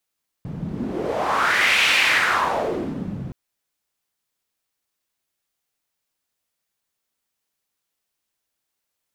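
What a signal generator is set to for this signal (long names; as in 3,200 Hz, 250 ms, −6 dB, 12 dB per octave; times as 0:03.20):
wind from filtered noise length 2.87 s, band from 150 Hz, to 2,500 Hz, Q 2.8, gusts 1, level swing 13 dB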